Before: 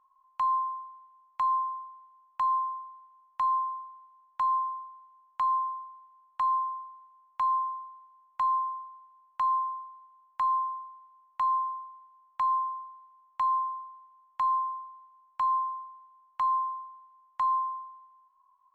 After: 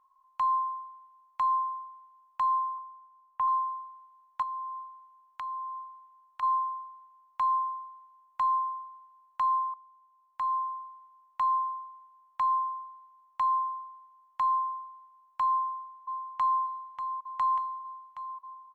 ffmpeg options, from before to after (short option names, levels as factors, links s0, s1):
-filter_complex "[0:a]asettb=1/sr,asplit=3[s0][s1][s2];[s0]atrim=end=2.784[s3];[s1]atrim=start=2.78:end=3.48,asetpts=PTS-STARTPTS,afade=t=in:d=0.004:c=qsin,afade=t=out:st=0.696:d=0.004:c=qsin,lowpass=1700[s4];[s2]atrim=start=3.476[s5];[s3][s4]acrossfade=d=0.004:c1=hsin:c2=qsin[s6];[s6][s5]acrossfade=d=0.004:c1=qsin:c2=hsin,asettb=1/sr,asplit=3[s7][s8][s9];[s7]atrim=end=4.424[s10];[s8]atrim=start=4.42:end=6.43,asetpts=PTS-STARTPTS,afade=t=in:d=0.004:c=qsin,afade=t=out:st=2.006:d=0.004:c=qsin,acompressor=threshold=0.0158:ratio=4:attack=3.2:release=140:knee=1:detection=peak[s11];[s9]atrim=start=6.426[s12];[s10][s11]acrossfade=d=0.004:c1=hsin:c2=qsin[s13];[s13][s12]acrossfade=d=0.004:c1=qsin:c2=hsin,asplit=2[s14][s15];[s15]afade=t=in:st=15.48:d=0.01,afade=t=out:st=16.61:d=0.01,aecho=0:1:590|1180|1770|2360|2950|3540|4130|4720|5310|5900|6490|7080:0.398107|0.29858|0.223935|0.167951|0.125964|0.0944727|0.0708545|0.0531409|0.0398557|0.0298918|0.0224188|0.0168141[s16];[s14][s16]amix=inputs=2:normalize=0,asplit=2[s17][s18];[s17]atrim=end=9.74,asetpts=PTS-STARTPTS,afade=t=out:st=9.736:d=0.004:c=hsin:silence=0.177828[s19];[s18]atrim=start=9.74,asetpts=PTS-STARTPTS,afade=t=in:d=1.12:silence=0.177828[s20];[s19][s20]concat=n=2:v=0:a=1"